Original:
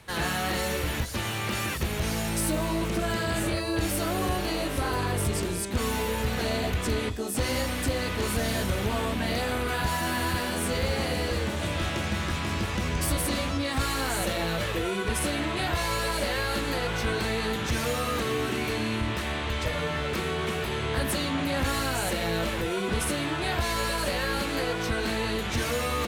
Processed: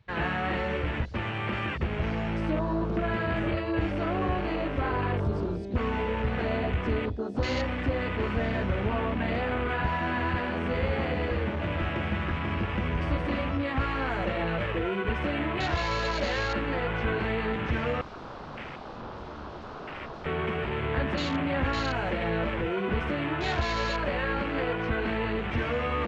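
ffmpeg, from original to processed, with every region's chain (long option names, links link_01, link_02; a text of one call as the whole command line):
ffmpeg -i in.wav -filter_complex "[0:a]asettb=1/sr,asplit=3[link_01][link_02][link_03];[link_01]atrim=end=18.014[link_04];[link_02]atrim=start=18.01:end=20.26,asetpts=PTS-STARTPTS,afade=type=in:duration=0.004:curve=qsin,afade=type=out:start_time=2.246:duration=0.004:curve=qsin,lowshelf=frequency=120:gain=6.5,aeval=exprs='0.0251*(abs(mod(val(0)/0.0251+3,4)-2)-1)':channel_layout=same,asplit=2[link_05][link_06];[link_06]adelay=40,volume=-8dB[link_07];[link_05][link_07]amix=inputs=2:normalize=0,atrim=end_sample=99225[link_08];[link_03]atrim=start=20.256[link_09];[link_04][link_08]acrossfade=duration=0.004:curve1=hsin:curve2=qsin[link_10];[link_10][link_09]acrossfade=duration=0.004:curve1=qsin:curve2=hsin,lowpass=frequency=4900:width=0.5412,lowpass=frequency=4900:width=1.3066,afwtdn=0.0178" out.wav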